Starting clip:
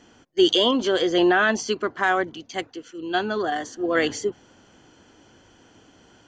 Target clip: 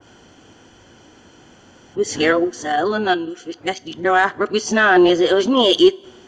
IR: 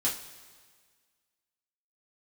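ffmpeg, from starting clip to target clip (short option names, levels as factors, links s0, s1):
-filter_complex "[0:a]areverse,acontrast=39,asplit=2[s0][s1];[1:a]atrim=start_sample=2205[s2];[s1][s2]afir=irnorm=-1:irlink=0,volume=0.0794[s3];[s0][s3]amix=inputs=2:normalize=0,adynamicequalizer=threshold=0.0501:dfrequency=1800:dqfactor=0.7:tfrequency=1800:tqfactor=0.7:attack=5:release=100:ratio=0.375:range=2:mode=cutabove:tftype=highshelf"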